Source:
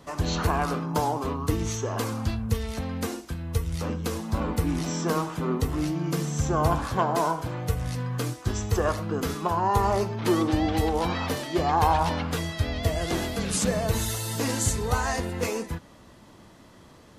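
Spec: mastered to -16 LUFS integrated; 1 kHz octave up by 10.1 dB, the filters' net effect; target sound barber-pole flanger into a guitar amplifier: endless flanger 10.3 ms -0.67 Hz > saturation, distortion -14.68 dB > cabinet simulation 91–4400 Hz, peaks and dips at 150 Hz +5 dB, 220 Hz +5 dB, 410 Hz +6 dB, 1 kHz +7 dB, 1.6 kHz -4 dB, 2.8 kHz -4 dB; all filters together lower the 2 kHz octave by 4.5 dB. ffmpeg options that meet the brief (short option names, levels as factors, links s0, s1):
-filter_complex "[0:a]equalizer=f=1000:t=o:g=8,equalizer=f=2000:t=o:g=-6,asplit=2[s0][s1];[s1]adelay=10.3,afreqshift=-0.67[s2];[s0][s2]amix=inputs=2:normalize=1,asoftclip=threshold=0.119,highpass=91,equalizer=f=150:t=q:w=4:g=5,equalizer=f=220:t=q:w=4:g=5,equalizer=f=410:t=q:w=4:g=6,equalizer=f=1000:t=q:w=4:g=7,equalizer=f=1600:t=q:w=4:g=-4,equalizer=f=2800:t=q:w=4:g=-4,lowpass=f=4400:w=0.5412,lowpass=f=4400:w=1.3066,volume=3.35"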